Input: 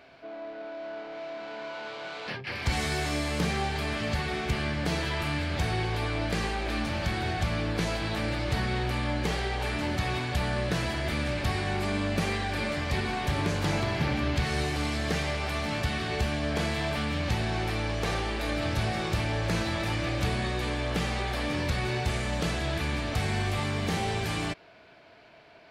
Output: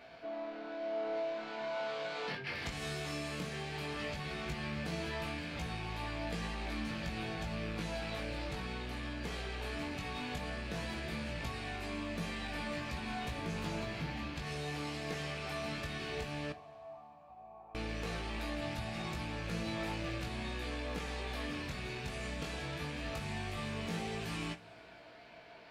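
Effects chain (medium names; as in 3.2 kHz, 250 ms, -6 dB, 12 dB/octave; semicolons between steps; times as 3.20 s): rattle on loud lows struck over -37 dBFS, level -27 dBFS; compression 6:1, threshold -36 dBFS, peak gain reduction 13 dB; chorus 0.16 Hz, delay 17 ms, depth 4.1 ms; 16.52–17.75 s: cascade formant filter a; two-slope reverb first 0.22 s, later 2.7 s, from -22 dB, DRR 7 dB; trim +1.5 dB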